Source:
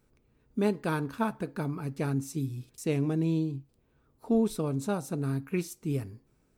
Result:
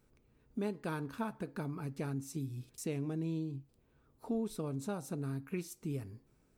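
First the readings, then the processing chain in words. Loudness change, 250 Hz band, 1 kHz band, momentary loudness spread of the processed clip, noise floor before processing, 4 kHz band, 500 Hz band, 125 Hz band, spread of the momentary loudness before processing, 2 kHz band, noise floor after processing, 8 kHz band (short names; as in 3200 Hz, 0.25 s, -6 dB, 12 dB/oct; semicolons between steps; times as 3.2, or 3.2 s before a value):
-8.5 dB, -8.5 dB, -8.5 dB, 6 LU, -69 dBFS, -7.5 dB, -9.0 dB, -8.0 dB, 7 LU, -8.0 dB, -71 dBFS, -5.5 dB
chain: compressor 2:1, threshold -38 dBFS, peak gain reduction 9.5 dB; gain -1.5 dB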